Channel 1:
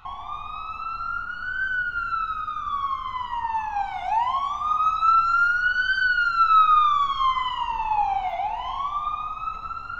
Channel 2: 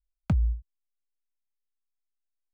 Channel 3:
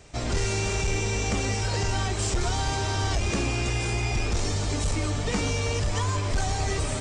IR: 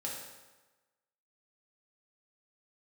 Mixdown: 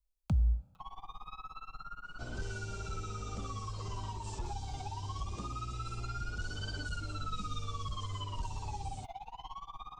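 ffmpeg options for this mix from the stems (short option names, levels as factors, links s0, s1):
-filter_complex "[0:a]aecho=1:1:6.3:0.72,tremolo=f=17:d=0.93,adelay=750,volume=0.501[s0];[1:a]alimiter=limit=0.0668:level=0:latency=1,volume=0.944,asplit=2[s1][s2];[s2]volume=0.237[s3];[2:a]lowpass=f=3700:p=1,equalizer=f=1600:t=o:w=0.39:g=3,adelay=2050,volume=0.224[s4];[3:a]atrim=start_sample=2205[s5];[s3][s5]afir=irnorm=-1:irlink=0[s6];[s0][s1][s4][s6]amix=inputs=4:normalize=0,equalizer=f=1800:t=o:w=0.8:g=-14.5,acrossover=split=220|3000[s7][s8][s9];[s8]acompressor=threshold=0.00708:ratio=6[s10];[s7][s10][s9]amix=inputs=3:normalize=0"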